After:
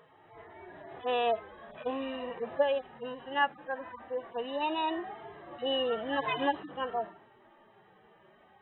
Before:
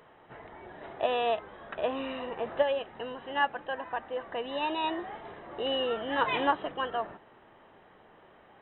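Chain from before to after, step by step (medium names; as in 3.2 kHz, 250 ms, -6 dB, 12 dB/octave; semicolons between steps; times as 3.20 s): harmonic-percussive separation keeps harmonic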